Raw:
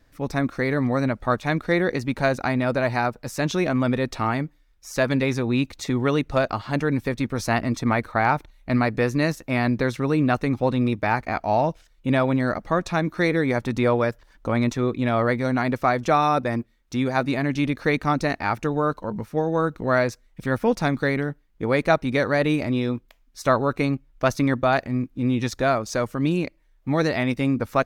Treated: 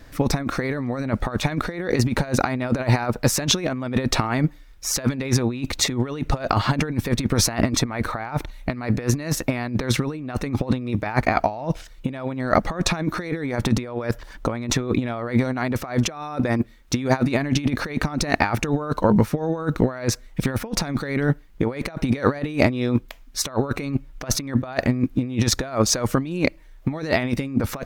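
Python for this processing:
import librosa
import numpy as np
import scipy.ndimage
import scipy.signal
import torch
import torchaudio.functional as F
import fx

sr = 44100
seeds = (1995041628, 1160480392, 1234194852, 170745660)

y = fx.over_compress(x, sr, threshold_db=-28.0, ratio=-0.5)
y = y * librosa.db_to_amplitude(7.0)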